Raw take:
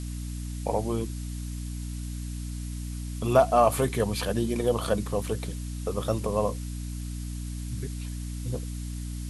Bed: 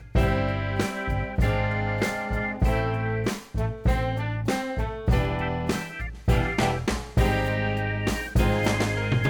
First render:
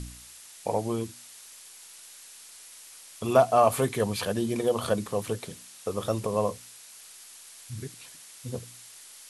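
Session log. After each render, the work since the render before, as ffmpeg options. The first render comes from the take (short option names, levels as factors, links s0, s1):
-af "bandreject=f=60:t=h:w=4,bandreject=f=120:t=h:w=4,bandreject=f=180:t=h:w=4,bandreject=f=240:t=h:w=4,bandreject=f=300:t=h:w=4"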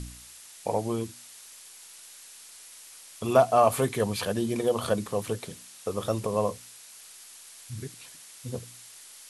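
-af anull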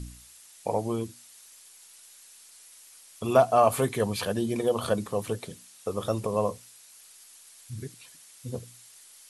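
-af "afftdn=nr=6:nf=-49"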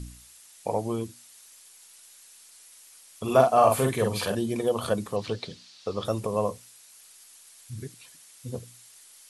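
-filter_complex "[0:a]asettb=1/sr,asplit=3[s0][s1][s2];[s0]atrim=end=3.234[s3];[s1]atrim=start=3.23:end=4.35,asetpts=PTS-STARTPTS,afade=t=in:d=0.004:c=qsin,afade=t=out:st=1.116:d=0.004:c=qsin,asplit=2[s4][s5];[s5]adelay=46,volume=0.708[s6];[s4][s6]amix=inputs=2:normalize=0,atrim=end_sample=49392[s7];[s2]atrim=start=4.346[s8];[s3][s7]acrossfade=d=0.004:c1=hsin:c2=qsin[s9];[s9][s8]acrossfade=d=0.004:c1=qsin:c2=hsin,asettb=1/sr,asplit=3[s10][s11][s12];[s10]atrim=end=5.164[s13];[s11]atrim=start=5.16:end=6.05,asetpts=PTS-STARTPTS,afade=t=in:d=0.004:c=qsin,afade=t=out:st=0.886:d=0.004:c=qsin,lowpass=f=4500:t=q:w=3.2[s14];[s12]atrim=start=6.046[s15];[s13][s14]acrossfade=d=0.004:c1=hsin:c2=qsin[s16];[s16][s15]acrossfade=d=0.004:c1=qsin:c2=hsin"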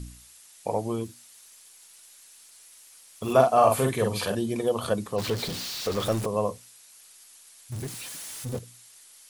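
-filter_complex "[0:a]asettb=1/sr,asplit=3[s0][s1][s2];[s0]atrim=end=1.064[s3];[s1]atrim=start=1.06:end=3.33,asetpts=PTS-STARTPTS,afade=t=in:d=0.004:c=qsin,afade=t=out:st=2.266:d=0.004:c=qsin,acrusher=bits=5:mode=log:mix=0:aa=0.000001[s4];[s2]atrim=start=3.326[s5];[s3][s4]acrossfade=d=0.004:c1=hsin:c2=qsin[s6];[s6][s5]acrossfade=d=0.004:c1=qsin:c2=hsin,asettb=1/sr,asplit=3[s7][s8][s9];[s7]atrim=end=5.184[s10];[s8]atrim=start=5.18:end=6.26,asetpts=PTS-STARTPTS,afade=t=in:d=0.004:c=qsin,afade=t=out:st=1.076:d=0.004:c=qsin,aeval=exprs='val(0)+0.5*0.0335*sgn(val(0))':c=same[s11];[s9]atrim=start=6.256[s12];[s10][s11]acrossfade=d=0.004:c1=hsin:c2=qsin[s13];[s13][s12]acrossfade=d=0.004:c1=qsin:c2=hsin,asettb=1/sr,asplit=3[s14][s15][s16];[s14]atrim=end=7.724[s17];[s15]atrim=start=7.72:end=8.59,asetpts=PTS-STARTPTS,afade=t=in:d=0.004:c=qsin,afade=t=out:st=0.866:d=0.004:c=qsin,aeval=exprs='val(0)+0.5*0.0178*sgn(val(0))':c=same[s18];[s16]atrim=start=8.586[s19];[s17][s18]acrossfade=d=0.004:c1=hsin:c2=qsin[s20];[s20][s19]acrossfade=d=0.004:c1=qsin:c2=hsin"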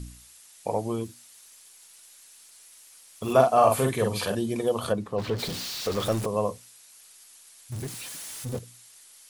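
-filter_complex "[0:a]asplit=3[s0][s1][s2];[s0]afade=t=out:st=4.91:d=0.02[s3];[s1]lowpass=f=1900:p=1,afade=t=in:st=4.91:d=0.02,afade=t=out:st=5.38:d=0.02[s4];[s2]afade=t=in:st=5.38:d=0.02[s5];[s3][s4][s5]amix=inputs=3:normalize=0"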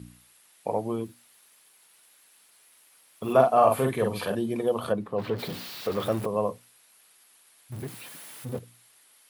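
-af "highpass=120,equalizer=f=6600:w=0.84:g=-12.5"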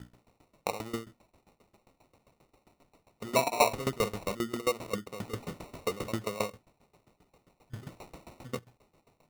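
-af "acrusher=samples=27:mix=1:aa=0.000001,aeval=exprs='val(0)*pow(10,-20*if(lt(mod(7.5*n/s,1),2*abs(7.5)/1000),1-mod(7.5*n/s,1)/(2*abs(7.5)/1000),(mod(7.5*n/s,1)-2*abs(7.5)/1000)/(1-2*abs(7.5)/1000))/20)':c=same"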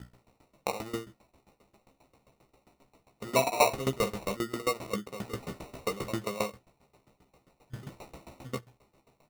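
-filter_complex "[0:a]asplit=2[s0][s1];[s1]adelay=15,volume=0.447[s2];[s0][s2]amix=inputs=2:normalize=0"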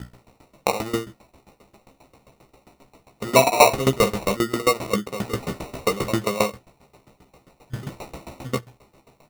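-af "volume=3.35,alimiter=limit=0.794:level=0:latency=1"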